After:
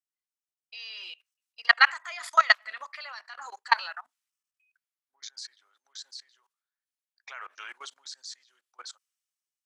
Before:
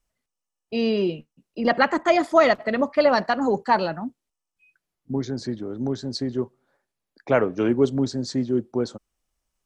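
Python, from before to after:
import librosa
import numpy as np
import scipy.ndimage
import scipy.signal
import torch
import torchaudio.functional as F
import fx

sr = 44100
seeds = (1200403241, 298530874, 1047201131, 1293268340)

y = scipy.signal.sosfilt(scipy.signal.butter(4, 1200.0, 'highpass', fs=sr, output='sos'), x)
y = fx.high_shelf(y, sr, hz=2200.0, db=4.5)
y = fx.level_steps(y, sr, step_db=22)
y = fx.band_widen(y, sr, depth_pct=40)
y = y * 10.0 ** (4.0 / 20.0)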